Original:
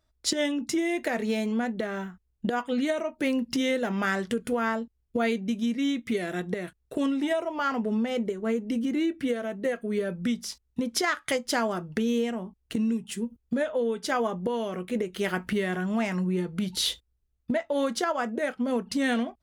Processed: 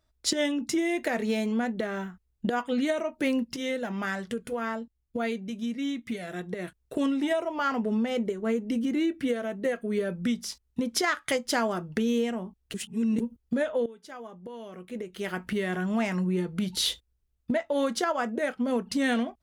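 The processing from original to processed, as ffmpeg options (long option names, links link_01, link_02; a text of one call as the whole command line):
ffmpeg -i in.wav -filter_complex "[0:a]asplit=3[link_01][link_02][link_03];[link_01]afade=type=out:start_time=3.43:duration=0.02[link_04];[link_02]flanger=delay=0.9:depth=1.1:regen=-72:speed=1:shape=triangular,afade=type=in:start_time=3.43:duration=0.02,afade=type=out:start_time=6.58:duration=0.02[link_05];[link_03]afade=type=in:start_time=6.58:duration=0.02[link_06];[link_04][link_05][link_06]amix=inputs=3:normalize=0,asplit=4[link_07][link_08][link_09][link_10];[link_07]atrim=end=12.742[link_11];[link_08]atrim=start=12.738:end=13.202,asetpts=PTS-STARTPTS,areverse[link_12];[link_09]atrim=start=13.198:end=13.86,asetpts=PTS-STARTPTS,afade=type=out:start_time=0.658:duration=0.004:curve=hsin:silence=0.141254[link_13];[link_10]atrim=start=13.86,asetpts=PTS-STARTPTS,afade=type=in:duration=1.96:curve=qua:silence=0.141254[link_14];[link_11][link_12]acrossfade=duration=0.004:curve1=hsin:curve2=hsin[link_15];[link_13][link_14]concat=n=2:v=0:a=1[link_16];[link_15][link_16]acrossfade=duration=0.004:curve1=hsin:curve2=hsin" out.wav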